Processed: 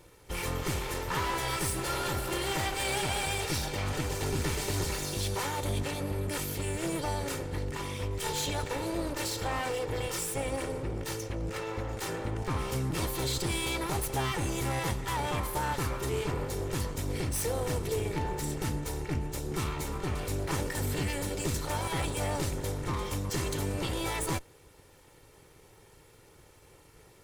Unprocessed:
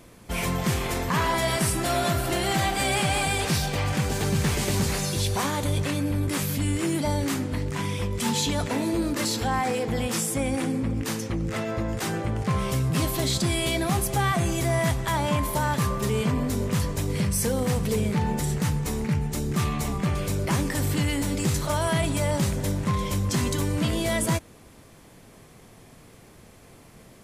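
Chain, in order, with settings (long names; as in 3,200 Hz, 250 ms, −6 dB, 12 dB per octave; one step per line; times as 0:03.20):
lower of the sound and its delayed copy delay 2.2 ms
level −5 dB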